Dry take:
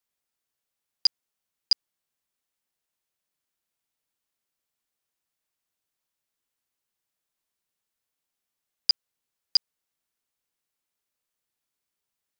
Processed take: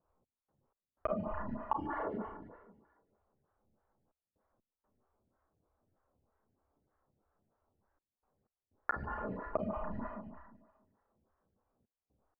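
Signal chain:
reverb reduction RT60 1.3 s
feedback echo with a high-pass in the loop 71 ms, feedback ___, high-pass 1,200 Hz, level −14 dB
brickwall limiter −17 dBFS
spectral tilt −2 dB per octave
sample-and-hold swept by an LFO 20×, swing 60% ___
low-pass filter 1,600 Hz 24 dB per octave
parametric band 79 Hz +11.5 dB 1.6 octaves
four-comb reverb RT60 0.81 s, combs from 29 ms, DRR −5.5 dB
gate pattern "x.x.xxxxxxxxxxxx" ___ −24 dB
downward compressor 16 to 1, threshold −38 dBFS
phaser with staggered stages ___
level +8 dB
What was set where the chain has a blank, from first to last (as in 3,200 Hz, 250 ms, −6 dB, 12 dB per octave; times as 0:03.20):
73%, 2 Hz, 62 BPM, 3.2 Hz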